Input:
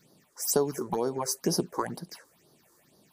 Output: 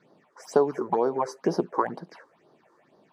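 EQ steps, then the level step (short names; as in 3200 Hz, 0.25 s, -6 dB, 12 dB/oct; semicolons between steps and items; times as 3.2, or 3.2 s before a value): band-pass 970 Hz, Q 0.53; LPF 1700 Hz 6 dB/oct; +8.0 dB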